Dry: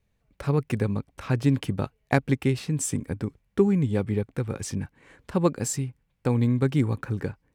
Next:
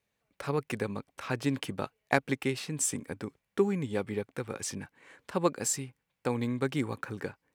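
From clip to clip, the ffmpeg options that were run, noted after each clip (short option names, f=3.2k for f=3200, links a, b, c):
-af "highpass=f=540:p=1"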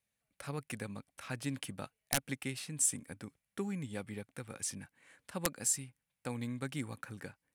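-af "aeval=exprs='(mod(5.31*val(0)+1,2)-1)/5.31':c=same,equalizer=f=400:t=o:w=0.67:g=-9,equalizer=f=1k:t=o:w=0.67:g=-5,equalizer=f=10k:t=o:w=0.67:g=10,volume=-6dB"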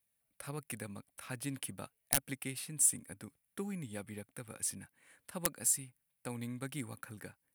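-af "aexciter=amount=1.6:drive=9.7:freq=9.2k,volume=-2.5dB"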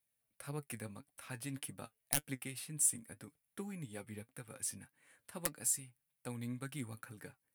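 -af "flanger=delay=6.6:depth=2.5:regen=54:speed=1.8:shape=sinusoidal,volume=1dB"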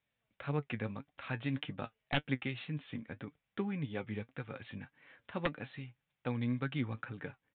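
-af "aresample=8000,aresample=44100,volume=8dB"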